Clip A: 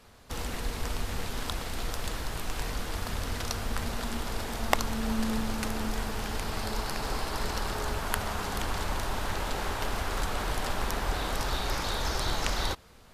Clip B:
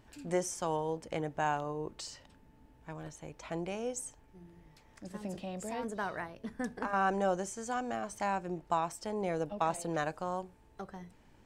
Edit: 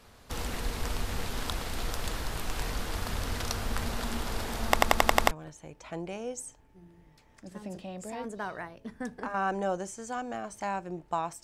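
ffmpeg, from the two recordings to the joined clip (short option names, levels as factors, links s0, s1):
-filter_complex "[0:a]apad=whole_dur=11.43,atrim=end=11.43,asplit=7[s0][s1][s2][s3][s4][s5][s6];[s0]atrim=end=4.772[s7];[s1]atrim=start=4.678:end=4.772[s8];[s2]atrim=start=4.678:end=4.772[s9];[s3]atrim=start=4.678:end=4.772[s10];[s4]atrim=start=4.678:end=4.772[s11];[s5]atrim=start=4.678:end=4.772[s12];[s6]atrim=start=4.678:end=4.772[s13];[1:a]atrim=start=2.898:end=9.02[s14];[s7][s8]acrossfade=d=0.004:c1=hsin:c2=hsin[s15];[s15][s9]acrossfade=d=0.004:c1=hsin:c2=hsin[s16];[s16][s10]acrossfade=d=0.004:c1=hsin:c2=hsin[s17];[s17][s11]acrossfade=d=0.004:c1=hsin:c2=hsin[s18];[s18][s12]acrossfade=d=0.004:c1=hsin:c2=hsin[s19];[s19][s13]acrossfade=d=0.004:c1=hsin:c2=hsin[s20];[s20][s14]acrossfade=d=0.004:c1=hsin:c2=hsin"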